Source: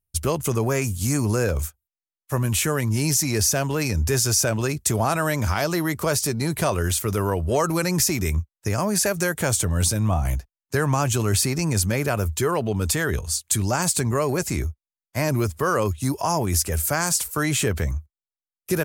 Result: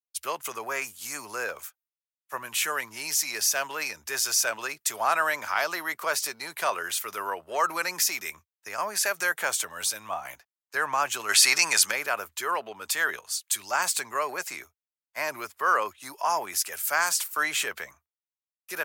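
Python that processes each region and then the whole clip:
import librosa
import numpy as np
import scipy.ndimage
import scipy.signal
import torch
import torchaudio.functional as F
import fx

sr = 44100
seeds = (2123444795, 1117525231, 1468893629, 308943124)

y = fx.chain(x, sr, fx.lowpass(hz=11000.0, slope=12),
    fx.tilt_shelf(db=-6.0, hz=650.0),
    fx.env_flatten(amount_pct=50), at=(11.29, 11.91))
y = scipy.signal.sosfilt(scipy.signal.butter(2, 1100.0, 'highpass', fs=sr, output='sos'), y)
y = fx.peak_eq(y, sr, hz=8700.0, db=-10.0, octaves=2.0)
y = fx.band_widen(y, sr, depth_pct=40)
y = F.gain(torch.from_numpy(y), 3.5).numpy()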